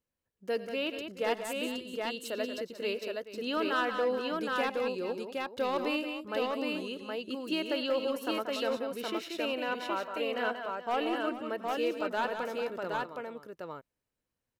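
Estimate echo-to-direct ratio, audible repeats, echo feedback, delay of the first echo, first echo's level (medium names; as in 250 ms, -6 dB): -1.5 dB, 4, no regular repeats, 91 ms, -17.5 dB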